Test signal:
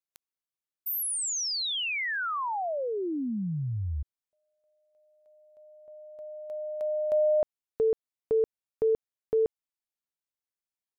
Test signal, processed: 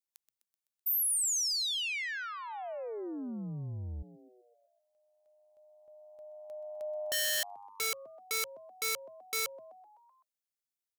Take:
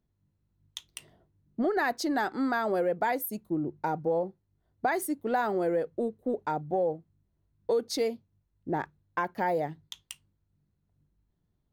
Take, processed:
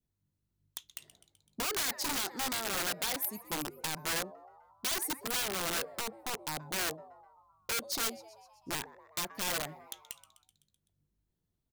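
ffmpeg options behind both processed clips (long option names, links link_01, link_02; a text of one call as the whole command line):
ffmpeg -i in.wav -filter_complex "[0:a]adynamicequalizer=threshold=0.00562:dfrequency=1100:dqfactor=1.6:tfrequency=1100:tqfactor=1.6:attack=5:release=100:ratio=0.375:range=3:mode=cutabove:tftype=bell,asplit=7[link_01][link_02][link_03][link_04][link_05][link_06][link_07];[link_02]adelay=127,afreqshift=100,volume=-17dB[link_08];[link_03]adelay=254,afreqshift=200,volume=-21.2dB[link_09];[link_04]adelay=381,afreqshift=300,volume=-25.3dB[link_10];[link_05]adelay=508,afreqshift=400,volume=-29.5dB[link_11];[link_06]adelay=635,afreqshift=500,volume=-33.6dB[link_12];[link_07]adelay=762,afreqshift=600,volume=-37.8dB[link_13];[link_01][link_08][link_09][link_10][link_11][link_12][link_13]amix=inputs=7:normalize=0,aeval=exprs='(mod(16.8*val(0)+1,2)-1)/16.8':channel_layout=same,highshelf=frequency=3100:gain=9.5,volume=-8dB" out.wav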